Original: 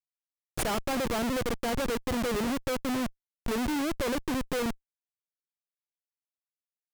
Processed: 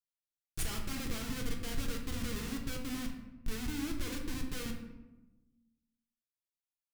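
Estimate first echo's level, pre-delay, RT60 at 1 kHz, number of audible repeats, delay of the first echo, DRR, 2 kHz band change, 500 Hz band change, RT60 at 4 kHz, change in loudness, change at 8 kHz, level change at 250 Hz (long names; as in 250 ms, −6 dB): no echo audible, 3 ms, 0.95 s, no echo audible, no echo audible, 1.0 dB, −8.5 dB, −16.0 dB, 0.60 s, −9.0 dB, −4.5 dB, −8.5 dB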